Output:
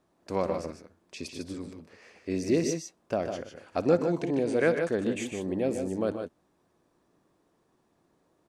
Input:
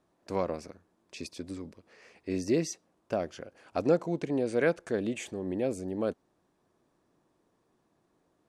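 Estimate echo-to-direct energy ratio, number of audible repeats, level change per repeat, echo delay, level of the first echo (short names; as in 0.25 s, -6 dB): -5.5 dB, 2, no steady repeat, 58 ms, -18.5 dB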